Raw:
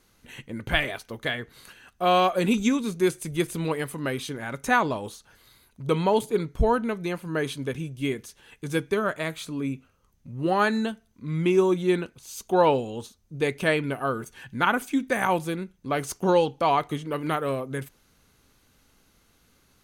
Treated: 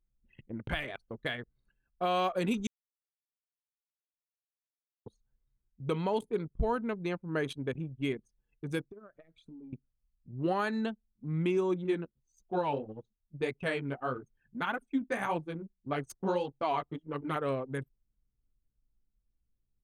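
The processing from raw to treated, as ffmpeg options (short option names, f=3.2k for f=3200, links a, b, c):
-filter_complex "[0:a]asettb=1/sr,asplit=3[a][b][c];[a]atrim=end=8.814[d];[b]atrim=start=8.81:end=9.73,asetpts=PTS-STARTPTS,afade=t=in:d=0.004:c=qsin,afade=t=out:st=0.916:d=0.004:c=qsin,acompressor=threshold=-36dB:ratio=16:attack=3.2:release=140:knee=1:detection=peak[e];[c]atrim=start=9.726[f];[d][e]acrossfade=d=0.004:c1=hsin:c2=qsin[g];[g][f]acrossfade=d=0.004:c1=qsin:c2=hsin,asettb=1/sr,asplit=3[h][i][j];[h]atrim=end=11.844[k];[i]atrim=start=11.84:end=17.36,asetpts=PTS-STARTPTS,afade=t=in:d=0.004:c=qsin,afade=t=out:st=5.516:d=0.004:c=qsin,flanger=delay=5.8:depth=9.4:regen=-3:speed=1.7:shape=triangular[l];[j]atrim=start=17.356[m];[k][l]acrossfade=d=0.004:c1=hsin:c2=qsin[n];[n][m]acrossfade=d=0.004:c1=qsin:c2=hsin,asplit=3[o][p][q];[o]atrim=end=2.67,asetpts=PTS-STARTPTS,afade=t=out:st=2.666:d=0.004:c=hsin[r];[p]atrim=start=2.67:end=5.06,asetpts=PTS-STARTPTS,volume=0[s];[q]atrim=start=5.06,asetpts=PTS-STARTPTS,afade=t=in:d=0.004:c=hsin[t];[r][s][t]concat=n=3:v=0:a=1,anlmdn=10,alimiter=limit=-16.5dB:level=0:latency=1:release=282,volume=-4.5dB"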